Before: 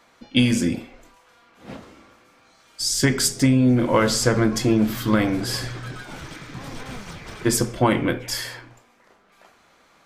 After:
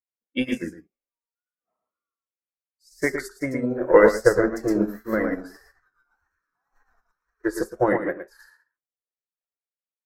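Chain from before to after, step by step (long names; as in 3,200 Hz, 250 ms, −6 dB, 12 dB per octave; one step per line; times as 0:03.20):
noise reduction from a noise print of the clip's start 20 dB
octave-band graphic EQ 125/500/1,000/2,000/4,000/8,000 Hz −8/+8/−4/+9/−11/−8 dB
in parallel at −2 dB: brickwall limiter −16 dBFS, peak gain reduction 14.5 dB
on the sum: tape wow and flutter 99 cents
on a send: single-tap delay 114 ms −4 dB
on the sum: expander for the loud parts 2.5 to 1, over −36 dBFS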